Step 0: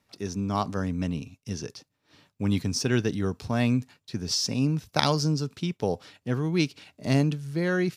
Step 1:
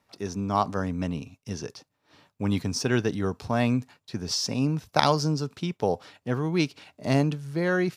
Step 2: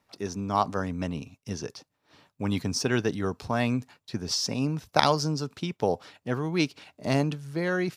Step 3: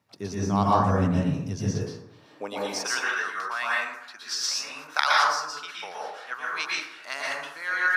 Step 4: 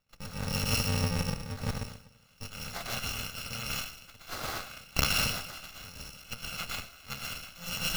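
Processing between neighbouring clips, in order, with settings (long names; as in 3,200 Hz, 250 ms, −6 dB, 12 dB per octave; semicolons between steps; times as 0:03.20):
parametric band 850 Hz +6.5 dB 1.9 octaves; level −1.5 dB
harmonic and percussive parts rebalanced percussive +4 dB; level −3 dB
high-pass filter sweep 110 Hz → 1,400 Hz, 0:01.61–0:03.01; dense smooth reverb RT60 0.81 s, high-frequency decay 0.45×, pre-delay 105 ms, DRR −5.5 dB; level −3 dB
samples in bit-reversed order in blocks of 128 samples; windowed peak hold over 5 samples; level −4.5 dB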